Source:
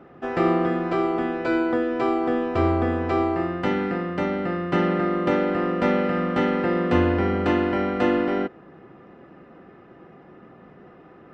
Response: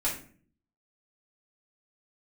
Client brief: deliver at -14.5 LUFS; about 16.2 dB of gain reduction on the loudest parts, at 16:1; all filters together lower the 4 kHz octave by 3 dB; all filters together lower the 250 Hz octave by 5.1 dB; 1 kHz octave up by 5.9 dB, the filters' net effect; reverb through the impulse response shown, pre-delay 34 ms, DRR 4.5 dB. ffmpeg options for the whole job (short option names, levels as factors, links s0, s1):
-filter_complex "[0:a]equalizer=f=250:t=o:g=-8.5,equalizer=f=1000:t=o:g=9,equalizer=f=4000:t=o:g=-5.5,acompressor=threshold=0.0251:ratio=16,asplit=2[s0][s1];[1:a]atrim=start_sample=2205,adelay=34[s2];[s1][s2]afir=irnorm=-1:irlink=0,volume=0.266[s3];[s0][s3]amix=inputs=2:normalize=0,volume=9.44"